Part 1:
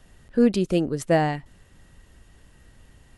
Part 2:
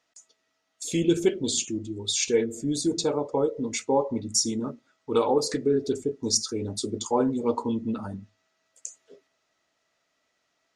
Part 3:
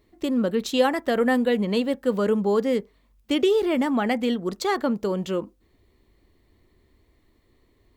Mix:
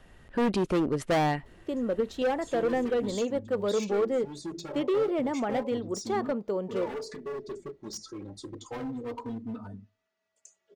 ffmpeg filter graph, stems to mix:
ffmpeg -i stem1.wav -i stem2.wav -i stem3.wav -filter_complex "[0:a]bass=frequency=250:gain=-5,treble=frequency=4000:gain=-10,asoftclip=type=hard:threshold=-24dB,volume=2dB,asplit=2[link_01][link_02];[1:a]lowpass=frequency=2700:poles=1,volume=26dB,asoftclip=hard,volume=-26dB,asplit=2[link_03][link_04];[link_04]adelay=3.2,afreqshift=-0.31[link_05];[link_03][link_05]amix=inputs=2:normalize=1,adelay=1600,volume=-5dB[link_06];[2:a]equalizer=frequency=550:width=0.65:gain=10.5,asoftclip=type=hard:threshold=-9.5dB,highshelf=frequency=8500:gain=-9,adelay=1450,volume=-1dB[link_07];[link_02]apad=whole_len=415419[link_08];[link_07][link_08]sidechaingate=range=-12dB:threshold=-48dB:ratio=16:detection=peak[link_09];[link_01][link_06][link_09]amix=inputs=3:normalize=0" out.wav

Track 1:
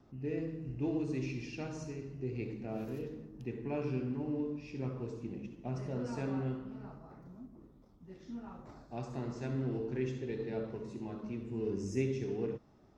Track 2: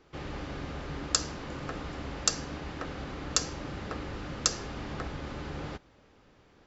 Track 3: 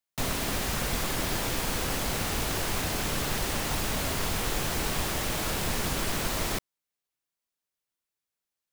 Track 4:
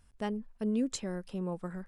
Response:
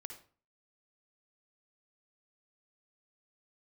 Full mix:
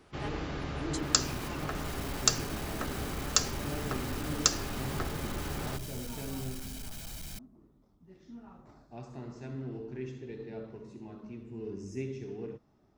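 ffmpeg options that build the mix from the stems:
-filter_complex "[0:a]volume=-4dB[link_01];[1:a]bandreject=frequency=60:width_type=h:width=6,bandreject=frequency=120:width_type=h:width=6,bandreject=frequency=180:width_type=h:width=6,bandreject=frequency=240:width_type=h:width=6,bandreject=frequency=300:width_type=h:width=6,volume=1.5dB[link_02];[2:a]equalizer=frequency=890:width_type=o:width=2.4:gain=-14,aecho=1:1:1.3:0.65,volume=26dB,asoftclip=hard,volume=-26dB,adelay=800,volume=-11.5dB[link_03];[3:a]highpass=frequency=720:width=0.5412,highpass=frequency=720:width=1.3066,volume=-2.5dB,asplit=2[link_04][link_05];[link_05]apad=whole_len=420103[link_06];[link_03][link_06]sidechaincompress=threshold=-53dB:ratio=8:attack=28:release=265[link_07];[link_01][link_02][link_07][link_04]amix=inputs=4:normalize=0,bandreject=frequency=510:width=12"

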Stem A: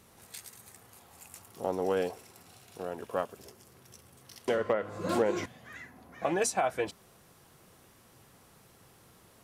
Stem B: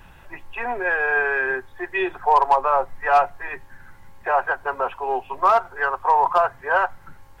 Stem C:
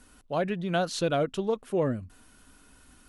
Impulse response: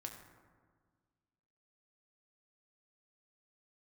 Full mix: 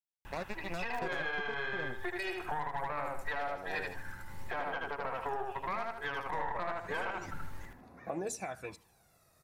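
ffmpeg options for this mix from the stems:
-filter_complex "[0:a]aphaser=in_gain=1:out_gain=1:delay=1.6:decay=0.62:speed=0.33:type=sinusoidal,adelay=1850,volume=-9.5dB,asplit=2[link_01][link_02];[link_02]volume=-21.5dB[link_03];[1:a]acompressor=threshold=-28dB:ratio=4,aeval=exprs='0.168*(cos(1*acos(clip(val(0)/0.168,-1,1)))-cos(1*PI/2))+0.0376*(cos(4*acos(clip(val(0)/0.168,-1,1)))-cos(4*PI/2))':channel_layout=same,adelay=250,volume=-1dB,asplit=2[link_04][link_05];[link_05]volume=-3dB[link_06];[2:a]acrusher=bits=3:mix=0:aa=0.5,volume=-2dB[link_07];[link_01][link_07]amix=inputs=2:normalize=0,asuperstop=centerf=3100:order=4:qfactor=5,acompressor=threshold=-32dB:ratio=4,volume=0dB[link_08];[link_03][link_06]amix=inputs=2:normalize=0,aecho=0:1:77|154|231|308:1|0.3|0.09|0.027[link_09];[link_04][link_08][link_09]amix=inputs=3:normalize=0,alimiter=level_in=1dB:limit=-24dB:level=0:latency=1:release=311,volume=-1dB"

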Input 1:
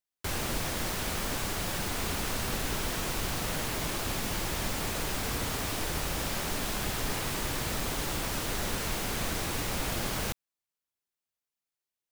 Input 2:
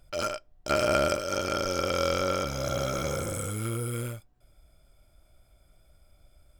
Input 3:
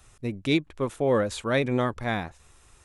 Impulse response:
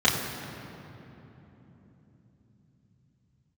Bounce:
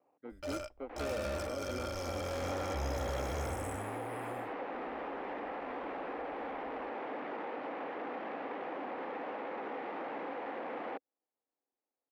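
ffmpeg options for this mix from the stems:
-filter_complex "[0:a]tiltshelf=frequency=1100:gain=6,aeval=exprs='(mod(29.9*val(0)+1,2)-1)/29.9':channel_layout=same,adelay=650,volume=-0.5dB[link_01];[1:a]aecho=1:1:3.4:0.39,asoftclip=type=hard:threshold=-26.5dB,adelay=300,volume=-10dB,afade=type=out:start_time=3.46:duration=0.49:silence=0.316228[link_02];[2:a]acrusher=samples=25:mix=1:aa=0.000001,volume=-18dB,asplit=2[link_03][link_04];[link_04]apad=whole_len=562733[link_05];[link_01][link_05]sidechaincompress=threshold=-55dB:ratio=8:attack=27:release=390[link_06];[link_06][link_03]amix=inputs=2:normalize=0,highpass=frequency=250:width=0.5412,highpass=frequency=250:width=1.3066,equalizer=frequency=280:width_type=q:width=4:gain=7,equalizer=frequency=500:width_type=q:width=4:gain=8,equalizer=frequency=780:width_type=q:width=4:gain=8,equalizer=frequency=1500:width_type=q:width=4:gain=-3,lowpass=frequency=2100:width=0.5412,lowpass=frequency=2100:width=1.3066,acompressor=threshold=-38dB:ratio=4,volume=0dB[link_07];[link_02][link_07]amix=inputs=2:normalize=0,equalizer=frequency=64:width_type=o:width=1.2:gain=14"

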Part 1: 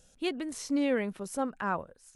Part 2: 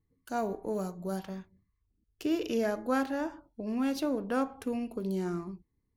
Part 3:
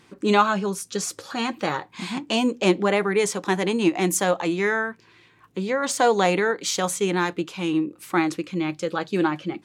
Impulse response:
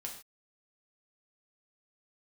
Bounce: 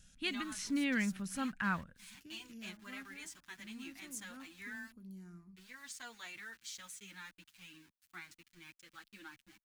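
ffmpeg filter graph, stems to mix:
-filter_complex "[0:a]highshelf=frequency=4500:gain=-7.5,volume=1dB,asplit=2[link_01][link_02];[1:a]equalizer=frequency=3300:width_type=o:width=2:gain=-9,volume=-16dB[link_03];[2:a]equalizer=frequency=110:width_type=o:width=2.2:gain=-14.5,aeval=exprs='val(0)*gte(abs(val(0)),0.02)':channel_layout=same,asplit=2[link_04][link_05];[link_05]adelay=7.5,afreqshift=-0.4[link_06];[link_04][link_06]amix=inputs=2:normalize=1,volume=-19.5dB[link_07];[link_02]apad=whole_len=262932[link_08];[link_03][link_08]sidechaincompress=threshold=-37dB:ratio=8:attack=16:release=128[link_09];[link_01][link_09][link_07]amix=inputs=3:normalize=0,firequalizer=gain_entry='entry(210,0);entry(430,-20);entry(1600,2)':delay=0.05:min_phase=1"

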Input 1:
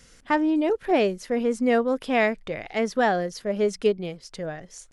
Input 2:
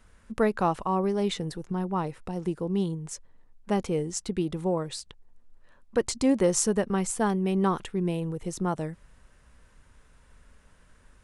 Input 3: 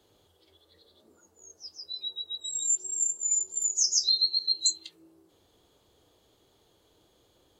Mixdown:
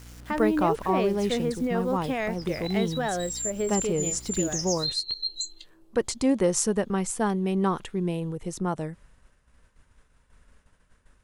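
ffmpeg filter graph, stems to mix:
ffmpeg -i stem1.wav -i stem2.wav -i stem3.wav -filter_complex "[0:a]aeval=exprs='val(0)+0.00708*(sin(2*PI*60*n/s)+sin(2*PI*2*60*n/s)/2+sin(2*PI*3*60*n/s)/3+sin(2*PI*4*60*n/s)/4+sin(2*PI*5*60*n/s)/5)':channel_layout=same,acrusher=bits=7:mix=0:aa=0.000001,volume=-1.5dB[link_01];[1:a]agate=range=-33dB:threshold=-50dB:ratio=3:detection=peak,volume=0dB[link_02];[2:a]adelay=750,volume=-3dB[link_03];[link_01][link_03]amix=inputs=2:normalize=0,alimiter=limit=-20dB:level=0:latency=1:release=171,volume=0dB[link_04];[link_02][link_04]amix=inputs=2:normalize=0" out.wav

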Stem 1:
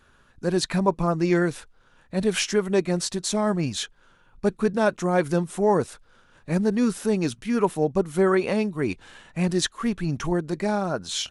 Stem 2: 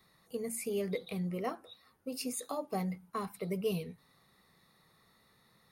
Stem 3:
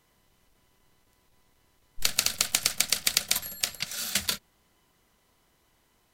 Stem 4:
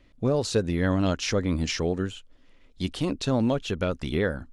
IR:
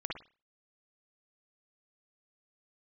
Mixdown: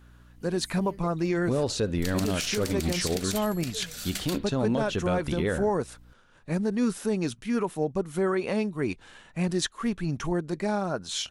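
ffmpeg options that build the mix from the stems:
-filter_complex "[0:a]alimiter=limit=-12.5dB:level=0:latency=1:release=217,volume=-3dB[link_01];[1:a]adelay=100,volume=-10dB[link_02];[2:a]aeval=exprs='val(0)+0.00447*(sin(2*PI*60*n/s)+sin(2*PI*2*60*n/s)/2+sin(2*PI*3*60*n/s)/3+sin(2*PI*4*60*n/s)/4+sin(2*PI*5*60*n/s)/5)':channel_layout=same,volume=-7dB,asplit=2[link_03][link_04];[link_04]volume=-12dB[link_05];[3:a]adelay=1250,volume=-1dB,asplit=2[link_06][link_07];[link_07]volume=-19.5dB[link_08];[4:a]atrim=start_sample=2205[link_09];[link_05][link_08]amix=inputs=2:normalize=0[link_10];[link_10][link_09]afir=irnorm=-1:irlink=0[link_11];[link_01][link_02][link_03][link_06][link_11]amix=inputs=5:normalize=0,alimiter=limit=-17dB:level=0:latency=1:release=55"

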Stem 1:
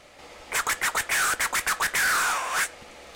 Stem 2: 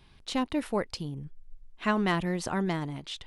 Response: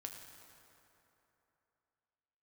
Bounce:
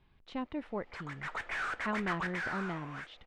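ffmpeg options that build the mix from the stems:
-filter_complex "[0:a]adelay=400,volume=-10dB,afade=type=in:start_time=1.11:duration=0.3:silence=0.398107,afade=type=out:start_time=2.26:duration=0.44:silence=0.398107[link_01];[1:a]volume=-8.5dB[link_02];[link_01][link_02]amix=inputs=2:normalize=0,lowpass=2500"

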